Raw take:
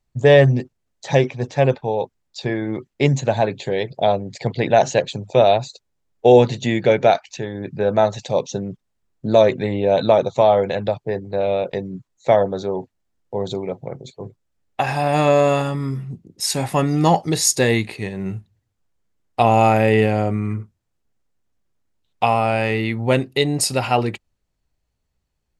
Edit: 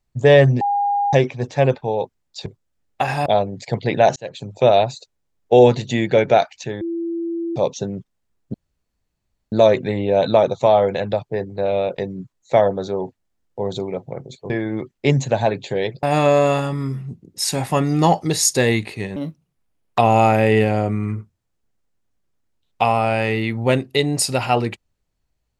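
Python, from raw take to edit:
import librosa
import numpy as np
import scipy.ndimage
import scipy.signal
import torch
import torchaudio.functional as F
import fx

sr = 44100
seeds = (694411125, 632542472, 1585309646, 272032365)

y = fx.edit(x, sr, fx.bleep(start_s=0.61, length_s=0.52, hz=811.0, db=-16.0),
    fx.swap(start_s=2.46, length_s=1.53, other_s=14.25, other_length_s=0.8),
    fx.fade_in_span(start_s=4.89, length_s=0.43),
    fx.bleep(start_s=7.54, length_s=0.75, hz=336.0, db=-21.5),
    fx.insert_room_tone(at_s=9.27, length_s=0.98),
    fx.speed_span(start_s=18.18, length_s=1.22, speed=1.48), tone=tone)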